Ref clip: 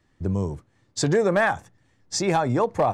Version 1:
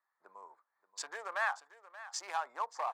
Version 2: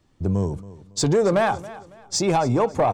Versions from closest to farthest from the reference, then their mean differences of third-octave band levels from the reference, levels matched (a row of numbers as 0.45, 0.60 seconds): 2, 1; 2.5, 12.0 decibels